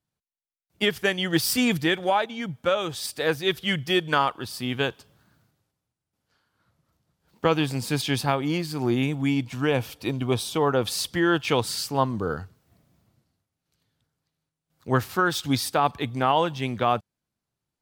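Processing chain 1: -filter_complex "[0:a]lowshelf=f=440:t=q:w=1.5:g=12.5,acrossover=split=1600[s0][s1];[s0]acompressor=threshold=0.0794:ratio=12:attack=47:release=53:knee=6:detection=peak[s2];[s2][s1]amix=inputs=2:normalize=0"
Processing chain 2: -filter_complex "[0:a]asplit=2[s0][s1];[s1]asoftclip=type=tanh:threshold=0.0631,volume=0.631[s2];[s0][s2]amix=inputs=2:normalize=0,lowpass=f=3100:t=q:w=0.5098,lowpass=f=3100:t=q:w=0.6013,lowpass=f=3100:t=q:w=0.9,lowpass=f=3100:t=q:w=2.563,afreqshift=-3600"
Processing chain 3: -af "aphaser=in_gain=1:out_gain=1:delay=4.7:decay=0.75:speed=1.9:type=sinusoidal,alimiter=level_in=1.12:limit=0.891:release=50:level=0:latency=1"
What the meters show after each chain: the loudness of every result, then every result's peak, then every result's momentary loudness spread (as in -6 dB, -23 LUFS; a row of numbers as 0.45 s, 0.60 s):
-22.0 LUFS, -20.0 LUFS, -20.0 LUFS; -5.5 dBFS, -5.5 dBFS, -1.0 dBFS; 4 LU, 6 LU, 7 LU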